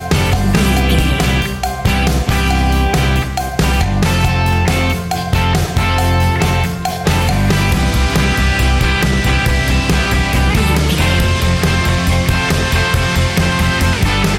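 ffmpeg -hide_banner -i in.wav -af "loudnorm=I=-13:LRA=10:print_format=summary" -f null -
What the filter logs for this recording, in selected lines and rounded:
Input Integrated:    -14.0 LUFS
Input True Peak:      -3.5 dBTP
Input LRA:             1.2 LU
Input Threshold:     -24.0 LUFS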